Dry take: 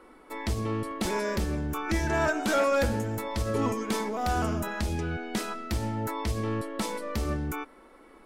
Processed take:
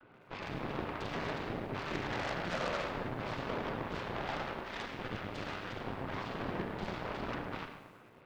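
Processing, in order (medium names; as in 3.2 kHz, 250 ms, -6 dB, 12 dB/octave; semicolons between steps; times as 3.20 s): LPC vocoder at 8 kHz whisper; peak limiter -20.5 dBFS, peak gain reduction 6.5 dB; compression 1.5:1, threshold -45 dBFS, peak gain reduction 7 dB; noise-vocoded speech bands 16; 4.25–4.94 s: Bessel high-pass 300 Hz, order 2; Schroeder reverb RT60 1.3 s, combs from 30 ms, DRR 2 dB; Chebyshev shaper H 3 -15 dB, 8 -16 dB, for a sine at -22 dBFS; bit-crushed delay 109 ms, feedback 55%, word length 10-bit, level -13 dB; trim +1 dB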